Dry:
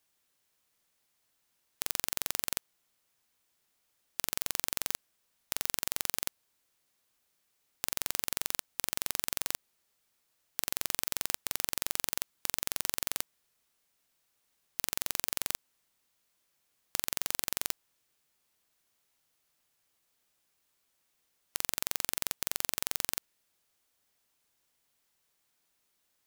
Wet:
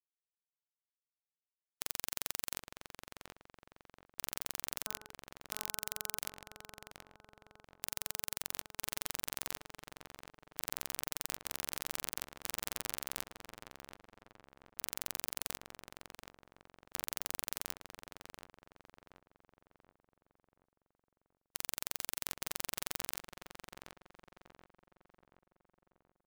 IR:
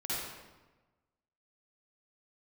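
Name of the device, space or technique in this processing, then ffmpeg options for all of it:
limiter into clipper: -filter_complex "[0:a]asettb=1/sr,asplit=3[a][b][c];[a]atrim=end=4.844[d];[b]atrim=start=4.84:end=6.18,asetpts=PTS-STARTPTS,afade=t=in:d=0.004:c=qsin,afade=t=out:st=1.336:d=0.004:c=qsin,bandreject=f=213.7:t=h:w=4,bandreject=f=427.4:t=h:w=4,bandreject=f=641.1:t=h:w=4,bandreject=f=854.8:t=h:w=4,bandreject=f=1.0685k:t=h:w=4,bandreject=f=1.2822k:t=h:w=4,bandreject=f=1.4959k:t=h:w=4[e];[c]atrim=start=6.176[f];[d][e]acrossfade=d=0.004:c1=hsin:c2=qsin[g];[g][f]acrossfade=d=0.004:c1=qsin:c2=hsin,alimiter=limit=-10dB:level=0:latency=1:release=110,asoftclip=type=hard:threshold=-15dB,afftfilt=real='re*gte(hypot(re,im),0.000794)':imag='im*gte(hypot(re,im),0.000794)':win_size=1024:overlap=0.75,asplit=2[h][i];[i]adelay=729,lowpass=f=1.7k:p=1,volume=-3.5dB,asplit=2[j][k];[k]adelay=729,lowpass=f=1.7k:p=1,volume=0.52,asplit=2[l][m];[m]adelay=729,lowpass=f=1.7k:p=1,volume=0.52,asplit=2[n][o];[o]adelay=729,lowpass=f=1.7k:p=1,volume=0.52,asplit=2[p][q];[q]adelay=729,lowpass=f=1.7k:p=1,volume=0.52,asplit=2[r][s];[s]adelay=729,lowpass=f=1.7k:p=1,volume=0.52,asplit=2[t][u];[u]adelay=729,lowpass=f=1.7k:p=1,volume=0.52[v];[h][j][l][n][p][r][t][v]amix=inputs=8:normalize=0,volume=6.5dB"

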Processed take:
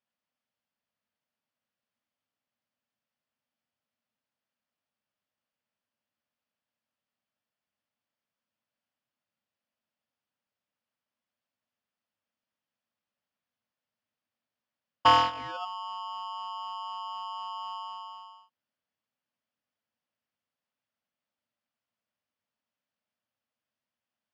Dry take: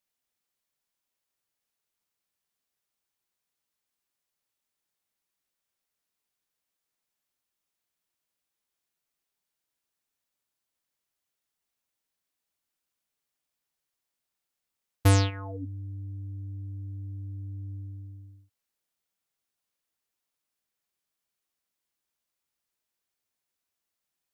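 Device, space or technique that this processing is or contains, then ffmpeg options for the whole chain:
ring modulator pedal into a guitar cabinet: -af "aeval=exprs='val(0)*sgn(sin(2*PI*1000*n/s))':c=same,highpass=99,equalizer=f=100:t=q:w=4:g=6,equalizer=f=230:t=q:w=4:g=9,equalizer=f=380:t=q:w=4:g=-9,equalizer=f=590:t=q:w=4:g=5,equalizer=f=2.2k:t=q:w=4:g=-3,equalizer=f=3.9k:t=q:w=4:g=-7,lowpass=f=4.4k:w=0.5412,lowpass=f=4.4k:w=1.3066"

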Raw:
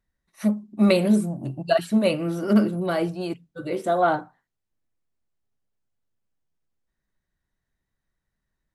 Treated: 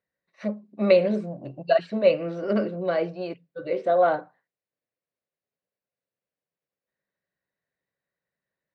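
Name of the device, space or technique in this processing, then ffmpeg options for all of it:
kitchen radio: -af "highpass=220,equalizer=f=230:t=q:w=4:g=-7,equalizer=f=330:t=q:w=4:g=-6,equalizer=f=530:t=q:w=4:g=7,equalizer=f=870:t=q:w=4:g=-6,equalizer=f=1.3k:t=q:w=4:g=-5,equalizer=f=3.3k:t=q:w=4:g=-8,lowpass=f=4.1k:w=0.5412,lowpass=f=4.1k:w=1.3066"

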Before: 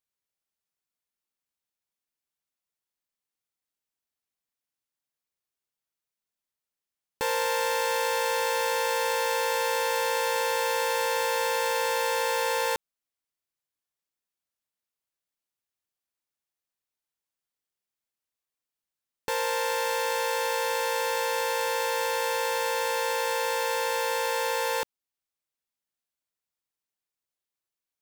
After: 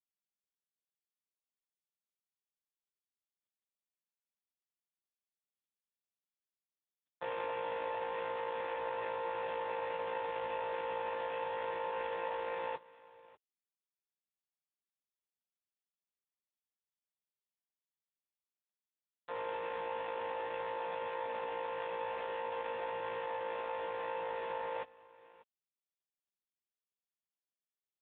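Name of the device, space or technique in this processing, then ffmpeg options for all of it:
satellite phone: -af "highpass=320,lowpass=3.2k,aecho=1:1:591:0.0944,volume=-8dB" -ar 8000 -c:a libopencore_amrnb -b:a 4750

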